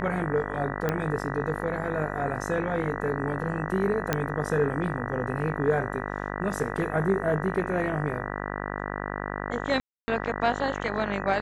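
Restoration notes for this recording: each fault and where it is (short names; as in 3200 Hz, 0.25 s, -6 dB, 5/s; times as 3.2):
buzz 50 Hz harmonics 39 -33 dBFS
0.89 pop -13 dBFS
4.13 pop -9 dBFS
9.8–10.08 gap 0.28 s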